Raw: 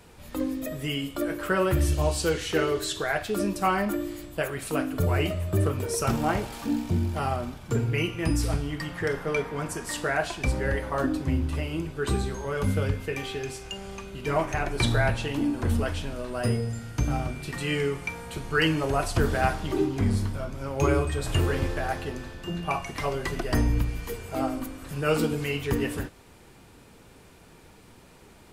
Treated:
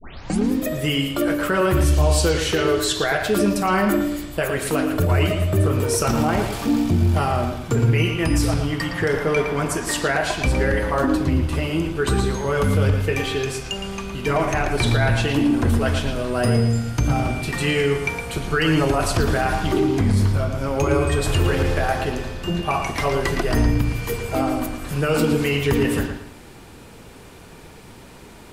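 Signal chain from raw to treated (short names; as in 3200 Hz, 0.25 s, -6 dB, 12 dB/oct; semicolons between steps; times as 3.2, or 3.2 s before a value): tape start at the beginning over 0.52 s; limiter -19.5 dBFS, peak gain reduction 9.5 dB; on a send: analogue delay 0.113 s, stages 4096, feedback 32%, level -7 dB; on the sum: gain +8.5 dB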